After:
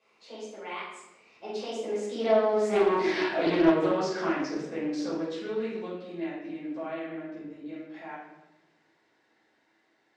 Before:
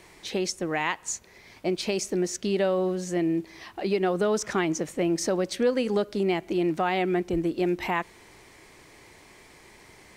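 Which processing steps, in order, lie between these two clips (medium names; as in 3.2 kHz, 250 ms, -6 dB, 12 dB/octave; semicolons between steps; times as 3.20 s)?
Doppler pass-by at 3.04 s, 47 m/s, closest 5.5 m; saturation -32 dBFS, distortion -12 dB; band-pass 300–4700 Hz; simulated room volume 360 m³, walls mixed, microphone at 5.3 m; loudspeaker Doppler distortion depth 0.28 ms; trim +5 dB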